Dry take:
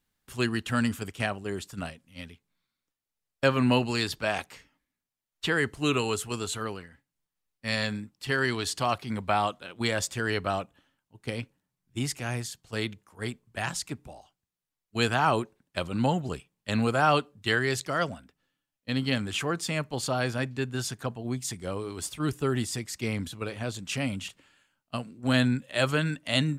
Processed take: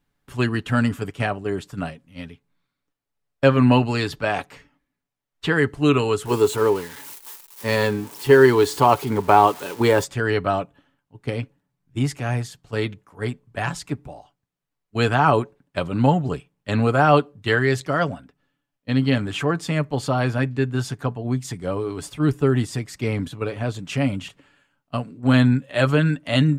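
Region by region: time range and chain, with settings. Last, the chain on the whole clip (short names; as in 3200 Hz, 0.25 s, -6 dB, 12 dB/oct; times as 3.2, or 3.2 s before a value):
6.25–10.04 switching spikes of -27 dBFS + small resonant body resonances 400/910 Hz, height 12 dB, ringing for 20 ms
whole clip: high shelf 2700 Hz -12 dB; comb 7 ms, depth 38%; gain +7.5 dB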